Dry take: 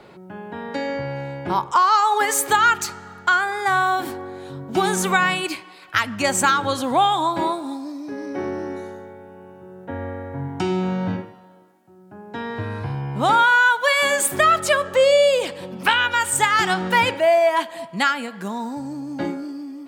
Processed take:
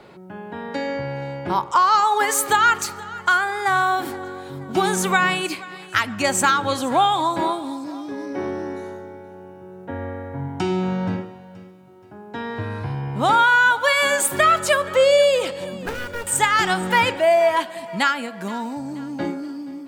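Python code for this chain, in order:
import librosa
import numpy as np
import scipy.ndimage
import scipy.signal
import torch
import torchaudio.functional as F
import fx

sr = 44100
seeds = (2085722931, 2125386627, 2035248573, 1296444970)

y = fx.median_filter(x, sr, points=41, at=(15.73, 16.27))
y = fx.echo_feedback(y, sr, ms=476, feedback_pct=42, wet_db=-19.0)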